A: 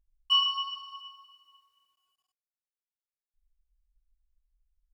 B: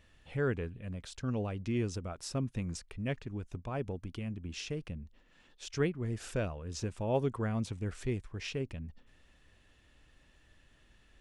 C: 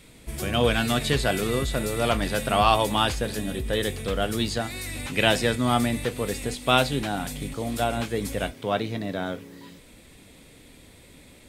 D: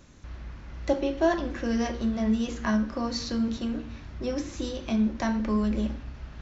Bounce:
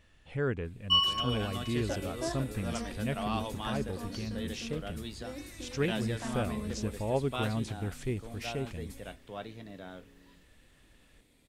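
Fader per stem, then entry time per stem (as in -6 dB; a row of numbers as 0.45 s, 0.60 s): -1.0 dB, +0.5 dB, -16.0 dB, -13.0 dB; 0.60 s, 0.00 s, 0.65 s, 1.00 s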